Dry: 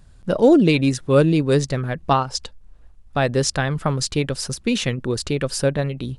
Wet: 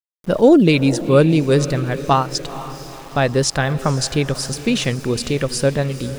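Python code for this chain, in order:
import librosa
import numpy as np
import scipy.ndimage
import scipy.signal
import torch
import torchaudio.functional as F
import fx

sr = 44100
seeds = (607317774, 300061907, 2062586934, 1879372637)

y = fx.echo_diffused(x, sr, ms=474, feedback_pct=53, wet_db=-14.0)
y = np.where(np.abs(y) >= 10.0 ** (-38.5 / 20.0), y, 0.0)
y = y * librosa.db_to_amplitude(2.5)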